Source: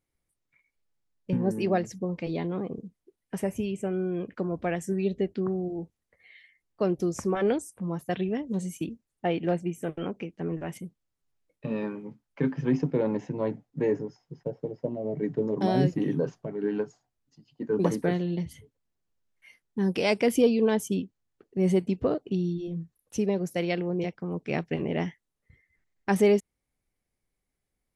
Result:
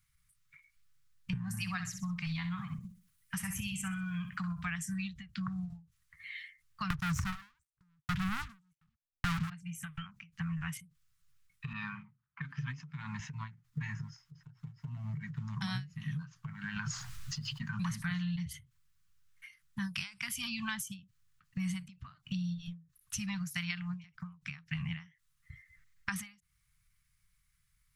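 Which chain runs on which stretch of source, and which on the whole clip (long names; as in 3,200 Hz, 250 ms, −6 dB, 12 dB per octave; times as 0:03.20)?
0:01.47–0:04.70: high-shelf EQ 8,700 Hz +8 dB + repeating echo 63 ms, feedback 28%, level −10 dB
0:06.90–0:09.50: noise gate −44 dBFS, range −22 dB + spectral tilt −3.5 dB per octave + leveller curve on the samples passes 5
0:11.73–0:13.20: high-pass filter 120 Hz + low-pass that shuts in the quiet parts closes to 880 Hz, open at −24 dBFS
0:16.76–0:18.36: high-shelf EQ 9,000 Hz −6.5 dB + envelope flattener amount 50%
whole clip: elliptic band-stop filter 150–1,200 Hz, stop band 60 dB; downward compressor 4 to 1, threshold −45 dBFS; every ending faded ahead of time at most 160 dB per second; level +10 dB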